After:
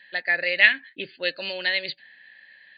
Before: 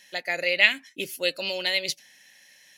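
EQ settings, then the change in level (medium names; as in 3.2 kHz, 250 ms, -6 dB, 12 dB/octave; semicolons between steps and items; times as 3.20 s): brick-wall FIR low-pass 4.8 kHz; peaking EQ 1.7 kHz +14.5 dB 0.28 oct; -2.0 dB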